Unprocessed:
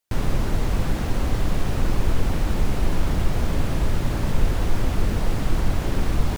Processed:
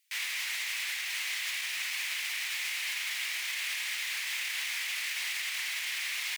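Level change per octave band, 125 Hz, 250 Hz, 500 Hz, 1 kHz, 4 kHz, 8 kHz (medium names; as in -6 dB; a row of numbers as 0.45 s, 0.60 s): under -40 dB, under -40 dB, under -30 dB, -16.0 dB, +5.5 dB, +4.0 dB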